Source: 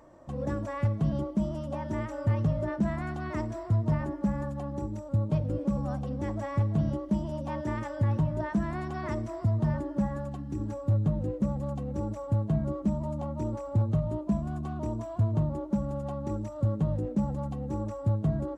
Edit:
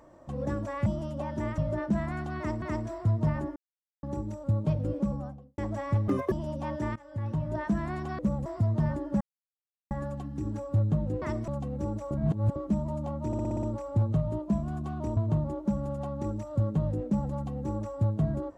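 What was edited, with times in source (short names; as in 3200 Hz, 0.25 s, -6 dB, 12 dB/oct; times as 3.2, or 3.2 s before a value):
0.86–1.39 cut
2.11–2.48 cut
3.27–3.52 loop, 2 plays
4.21–4.68 mute
5.59–6.23 studio fade out
6.73–7.17 speed 185%
7.81–8.47 fade in, from -22 dB
9.04–9.3 swap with 11.36–11.63
10.05 insert silence 0.70 s
12.26–12.71 reverse
13.42 stutter 0.06 s, 7 plays
14.96–15.22 cut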